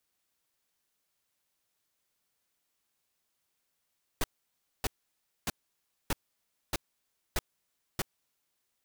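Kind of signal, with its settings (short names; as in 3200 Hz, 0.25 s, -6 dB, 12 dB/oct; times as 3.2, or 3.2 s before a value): noise bursts pink, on 0.03 s, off 0.60 s, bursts 7, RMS -29.5 dBFS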